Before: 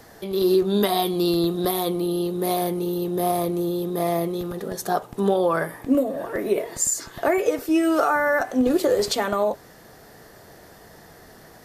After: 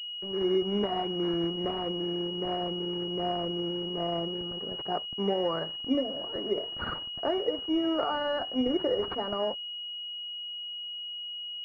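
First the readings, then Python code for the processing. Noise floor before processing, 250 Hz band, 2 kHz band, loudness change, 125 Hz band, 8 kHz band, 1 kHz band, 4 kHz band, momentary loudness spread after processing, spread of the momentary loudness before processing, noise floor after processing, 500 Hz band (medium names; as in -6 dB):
-48 dBFS, -8.5 dB, -14.0 dB, -8.0 dB, -8.5 dB, under -40 dB, -9.0 dB, +4.5 dB, 7 LU, 6 LU, -39 dBFS, -8.5 dB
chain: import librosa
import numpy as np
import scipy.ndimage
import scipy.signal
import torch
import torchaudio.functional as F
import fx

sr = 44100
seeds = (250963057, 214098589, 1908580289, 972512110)

y = np.sign(x) * np.maximum(np.abs(x) - 10.0 ** (-40.5 / 20.0), 0.0)
y = fx.pwm(y, sr, carrier_hz=2900.0)
y = y * 10.0 ** (-7.5 / 20.0)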